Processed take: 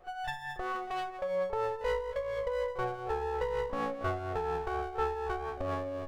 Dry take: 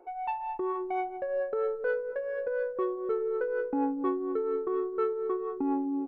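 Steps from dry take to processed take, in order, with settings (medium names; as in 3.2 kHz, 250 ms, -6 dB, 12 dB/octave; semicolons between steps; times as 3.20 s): comb filter that takes the minimum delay 1.6 ms; de-hum 76.59 Hz, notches 30; pre-echo 33 ms -16 dB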